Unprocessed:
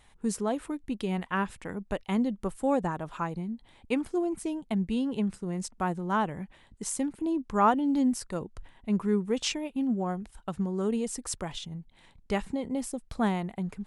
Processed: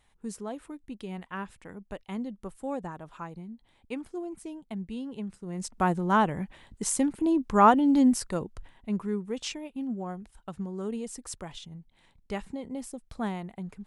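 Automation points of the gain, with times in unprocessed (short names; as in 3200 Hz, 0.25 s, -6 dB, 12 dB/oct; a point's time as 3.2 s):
5.37 s -7.5 dB
5.8 s +4.5 dB
8.19 s +4.5 dB
9.17 s -5 dB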